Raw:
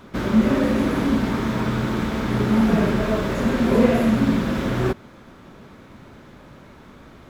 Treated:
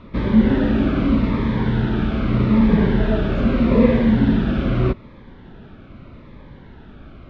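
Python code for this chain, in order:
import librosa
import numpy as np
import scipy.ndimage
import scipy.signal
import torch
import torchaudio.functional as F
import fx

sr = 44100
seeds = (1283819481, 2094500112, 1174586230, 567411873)

y = scipy.signal.sosfilt(scipy.signal.butter(4, 3800.0, 'lowpass', fs=sr, output='sos'), x)
y = fx.low_shelf(y, sr, hz=78.0, db=12.0)
y = fx.notch_cascade(y, sr, direction='falling', hz=0.81)
y = y * 10.0 ** (1.5 / 20.0)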